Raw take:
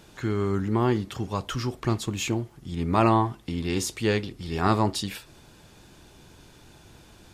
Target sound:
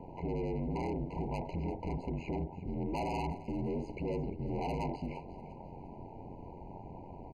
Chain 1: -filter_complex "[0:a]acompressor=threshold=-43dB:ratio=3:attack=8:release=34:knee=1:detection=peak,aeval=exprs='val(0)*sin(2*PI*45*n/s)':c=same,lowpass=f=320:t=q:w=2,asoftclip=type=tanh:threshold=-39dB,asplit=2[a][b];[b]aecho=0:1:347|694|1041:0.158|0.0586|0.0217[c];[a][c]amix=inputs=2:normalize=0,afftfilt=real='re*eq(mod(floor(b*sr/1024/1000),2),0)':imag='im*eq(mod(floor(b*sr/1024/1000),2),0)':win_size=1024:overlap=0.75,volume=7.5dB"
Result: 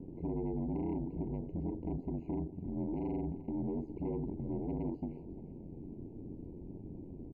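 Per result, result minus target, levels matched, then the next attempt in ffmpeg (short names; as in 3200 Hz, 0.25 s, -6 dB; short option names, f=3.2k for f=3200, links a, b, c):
1000 Hz band -9.5 dB; compressor: peak gain reduction +5.5 dB
-filter_complex "[0:a]acompressor=threshold=-43dB:ratio=3:attack=8:release=34:knee=1:detection=peak,aeval=exprs='val(0)*sin(2*PI*45*n/s)':c=same,lowpass=f=920:t=q:w=2,asoftclip=type=tanh:threshold=-39dB,asplit=2[a][b];[b]aecho=0:1:347|694|1041:0.158|0.0586|0.0217[c];[a][c]amix=inputs=2:normalize=0,afftfilt=real='re*eq(mod(floor(b*sr/1024/1000),2),0)':imag='im*eq(mod(floor(b*sr/1024/1000),2),0)':win_size=1024:overlap=0.75,volume=7.5dB"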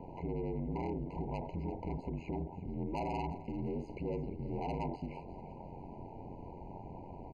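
compressor: peak gain reduction +5.5 dB
-filter_complex "[0:a]acompressor=threshold=-34.5dB:ratio=3:attack=8:release=34:knee=1:detection=peak,aeval=exprs='val(0)*sin(2*PI*45*n/s)':c=same,lowpass=f=920:t=q:w=2,asoftclip=type=tanh:threshold=-39dB,asplit=2[a][b];[b]aecho=0:1:347|694|1041:0.158|0.0586|0.0217[c];[a][c]amix=inputs=2:normalize=0,afftfilt=real='re*eq(mod(floor(b*sr/1024/1000),2),0)':imag='im*eq(mod(floor(b*sr/1024/1000),2),0)':win_size=1024:overlap=0.75,volume=7.5dB"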